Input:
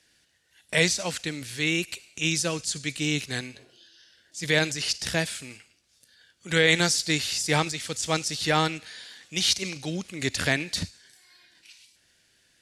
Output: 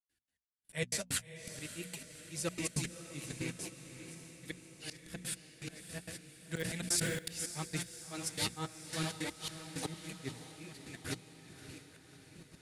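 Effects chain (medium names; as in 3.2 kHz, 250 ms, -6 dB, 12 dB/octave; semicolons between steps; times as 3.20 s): backward echo that repeats 430 ms, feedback 76%, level -14 dB; trance gate ".x.x...xx" 163 bpm -60 dB; gate with hold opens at -43 dBFS; flange 0.42 Hz, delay 1.6 ms, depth 9.2 ms, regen -26%; hum notches 60/120/180/240 Hz; in parallel at -8.5 dB: integer overflow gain 11.5 dB; on the sum: peaking EQ 560 Hz -5.5 dB 1.5 oct; slow attack 500 ms; FFT filter 460 Hz 0 dB, 5.8 kHz -10 dB, 10 kHz +1 dB; on a send: echo that smears into a reverb 593 ms, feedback 59%, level -11 dB; 6.55–7.19 s: on the sum: decay stretcher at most 31 dB/s; trim +7.5 dB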